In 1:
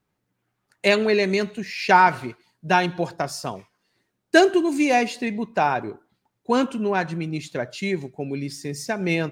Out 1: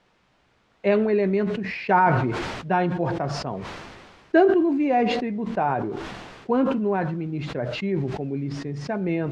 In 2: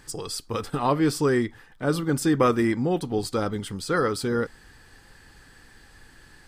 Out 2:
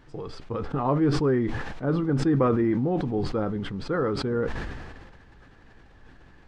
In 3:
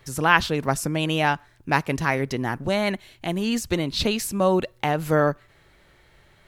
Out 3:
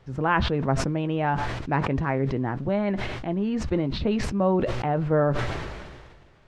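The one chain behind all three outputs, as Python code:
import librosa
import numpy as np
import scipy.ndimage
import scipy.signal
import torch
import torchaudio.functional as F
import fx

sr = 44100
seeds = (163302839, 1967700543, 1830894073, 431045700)

y = fx.high_shelf(x, sr, hz=2800.0, db=-8.5)
y = fx.dmg_noise_colour(y, sr, seeds[0], colour='white', level_db=-52.0)
y = fx.spacing_loss(y, sr, db_at_10k=37)
y = fx.doubler(y, sr, ms=15.0, db=-13.0)
y = fx.sustainer(y, sr, db_per_s=33.0)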